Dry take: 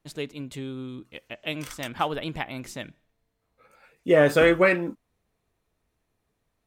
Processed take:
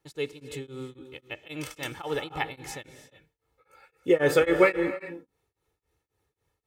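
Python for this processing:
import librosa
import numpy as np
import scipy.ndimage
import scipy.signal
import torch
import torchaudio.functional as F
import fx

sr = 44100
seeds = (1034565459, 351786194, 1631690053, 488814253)

y = scipy.signal.sosfilt(scipy.signal.butter(2, 54.0, 'highpass', fs=sr, output='sos'), x)
y = y + 0.66 * np.pad(y, (int(2.3 * sr / 1000.0), 0))[:len(y)]
y = fx.rev_gated(y, sr, seeds[0], gate_ms=380, shape='rising', drr_db=11.5)
y = y * np.abs(np.cos(np.pi * 3.7 * np.arange(len(y)) / sr))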